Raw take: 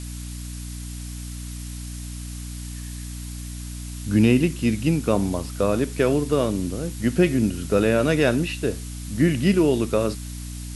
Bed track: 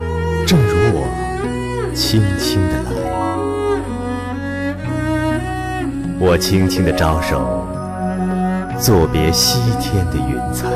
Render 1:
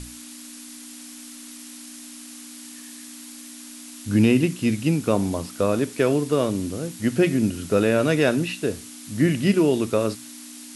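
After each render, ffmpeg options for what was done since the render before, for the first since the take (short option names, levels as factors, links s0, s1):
-af "bandreject=f=60:t=h:w=6,bandreject=f=120:t=h:w=6,bandreject=f=180:t=h:w=6"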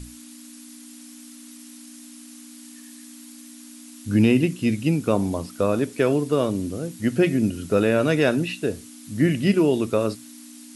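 -af "afftdn=nr=6:nf=-41"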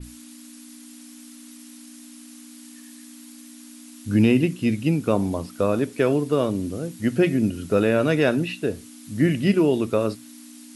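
-af "adynamicequalizer=threshold=0.00447:dfrequency=7600:dqfactor=0.76:tfrequency=7600:tqfactor=0.76:attack=5:release=100:ratio=0.375:range=2.5:mode=cutabove:tftype=bell"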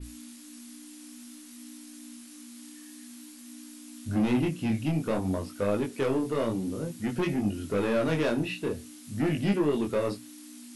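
-af "asoftclip=type=tanh:threshold=0.119,flanger=delay=19.5:depth=7.2:speed=0.53"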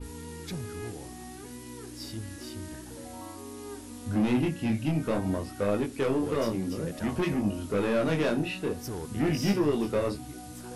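-filter_complex "[1:a]volume=0.0562[s0];[0:a][s0]amix=inputs=2:normalize=0"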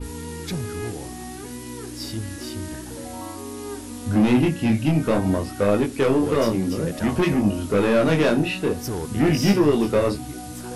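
-af "volume=2.51"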